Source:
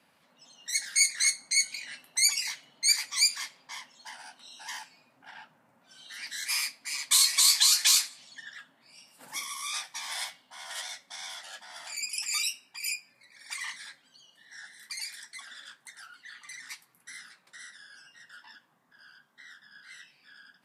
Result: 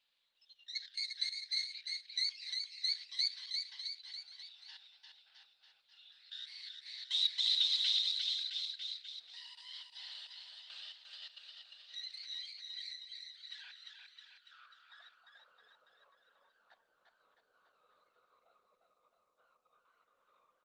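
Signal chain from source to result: pitch bend over the whole clip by -5.5 st starting unshifted; level held to a coarse grid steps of 14 dB; band-pass sweep 3.6 kHz -> 510 Hz, 13.47–15.66 s; cabinet simulation 170–7100 Hz, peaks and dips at 500 Hz +8 dB, 3.9 kHz +7 dB, 6.7 kHz -10 dB; on a send: bouncing-ball echo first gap 350 ms, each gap 0.9×, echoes 5; on the sum: trim -2.5 dB; Opus 24 kbps 48 kHz

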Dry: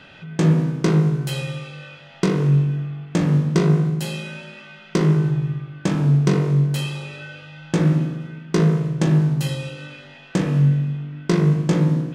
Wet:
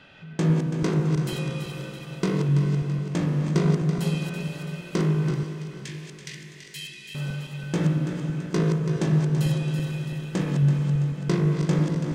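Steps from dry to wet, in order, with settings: backward echo that repeats 166 ms, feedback 72%, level -7 dB; 5.43–7.15 s: elliptic high-pass 1.8 kHz; echo that smears into a reverb 472 ms, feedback 49%, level -11 dB; trim -6 dB

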